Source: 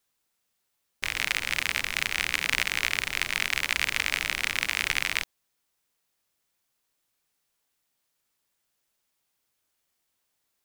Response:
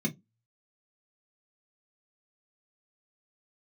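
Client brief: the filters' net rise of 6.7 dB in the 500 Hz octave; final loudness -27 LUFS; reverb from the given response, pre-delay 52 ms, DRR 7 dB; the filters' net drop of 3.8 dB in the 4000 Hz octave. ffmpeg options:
-filter_complex "[0:a]equalizer=f=500:t=o:g=8.5,equalizer=f=4k:t=o:g=-5.5,asplit=2[a][b];[1:a]atrim=start_sample=2205,adelay=52[c];[b][c]afir=irnorm=-1:irlink=0,volume=-11.5dB[d];[a][d]amix=inputs=2:normalize=0"

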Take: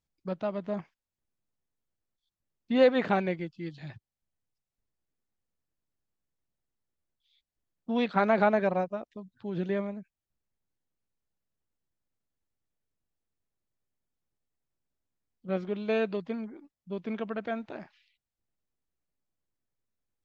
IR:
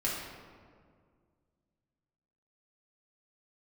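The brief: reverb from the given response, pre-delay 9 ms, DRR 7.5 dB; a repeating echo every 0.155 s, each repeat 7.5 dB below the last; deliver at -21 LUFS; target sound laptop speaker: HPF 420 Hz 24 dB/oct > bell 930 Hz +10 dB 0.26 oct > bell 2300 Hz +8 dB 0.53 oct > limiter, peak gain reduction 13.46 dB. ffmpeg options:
-filter_complex "[0:a]aecho=1:1:155|310|465|620|775:0.422|0.177|0.0744|0.0312|0.0131,asplit=2[a][b];[1:a]atrim=start_sample=2205,adelay=9[c];[b][c]afir=irnorm=-1:irlink=0,volume=-14dB[d];[a][d]amix=inputs=2:normalize=0,highpass=f=420:w=0.5412,highpass=f=420:w=1.3066,equalizer=f=930:t=o:w=0.26:g=10,equalizer=f=2.3k:t=o:w=0.53:g=8,volume=13dB,alimiter=limit=-9dB:level=0:latency=1"

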